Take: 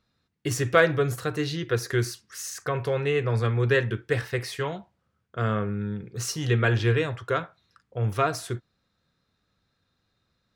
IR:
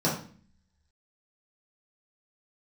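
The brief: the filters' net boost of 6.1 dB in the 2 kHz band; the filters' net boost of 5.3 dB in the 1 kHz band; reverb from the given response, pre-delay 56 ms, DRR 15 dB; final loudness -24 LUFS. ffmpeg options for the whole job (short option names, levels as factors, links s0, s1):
-filter_complex "[0:a]equalizer=f=1000:t=o:g=5,equalizer=f=2000:t=o:g=6,asplit=2[s0][s1];[1:a]atrim=start_sample=2205,adelay=56[s2];[s1][s2]afir=irnorm=-1:irlink=0,volume=0.0447[s3];[s0][s3]amix=inputs=2:normalize=0,volume=0.944"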